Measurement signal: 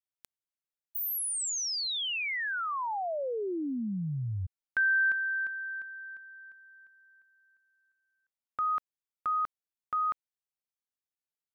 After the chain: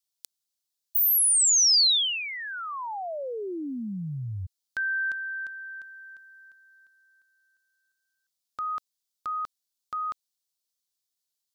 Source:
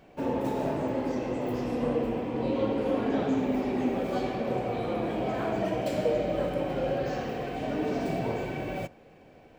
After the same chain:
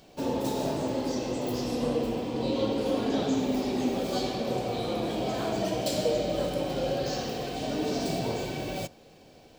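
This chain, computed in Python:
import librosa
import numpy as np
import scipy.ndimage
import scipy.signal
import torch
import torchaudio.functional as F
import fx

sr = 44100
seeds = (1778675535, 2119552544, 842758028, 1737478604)

y = fx.high_shelf_res(x, sr, hz=3000.0, db=11.0, q=1.5)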